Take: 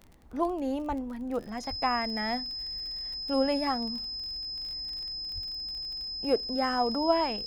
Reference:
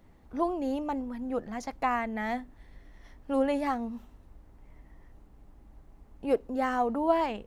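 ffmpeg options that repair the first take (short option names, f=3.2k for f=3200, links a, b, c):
-filter_complex "[0:a]adeclick=t=4,bandreject=f=5.1k:w=30,asplit=3[a][b][c];[a]afade=t=out:st=0.88:d=0.02[d];[b]highpass=f=140:w=0.5412,highpass=f=140:w=1.3066,afade=t=in:st=0.88:d=0.02,afade=t=out:st=1:d=0.02[e];[c]afade=t=in:st=1:d=0.02[f];[d][e][f]amix=inputs=3:normalize=0,asplit=3[g][h][i];[g]afade=t=out:st=1.69:d=0.02[j];[h]highpass=f=140:w=0.5412,highpass=f=140:w=1.3066,afade=t=in:st=1.69:d=0.02,afade=t=out:st=1.81:d=0.02[k];[i]afade=t=in:st=1.81:d=0.02[l];[j][k][l]amix=inputs=3:normalize=0,asplit=3[m][n][o];[m]afade=t=out:st=5.34:d=0.02[p];[n]highpass=f=140:w=0.5412,highpass=f=140:w=1.3066,afade=t=in:st=5.34:d=0.02,afade=t=out:st=5.46:d=0.02[q];[o]afade=t=in:st=5.46:d=0.02[r];[p][q][r]amix=inputs=3:normalize=0"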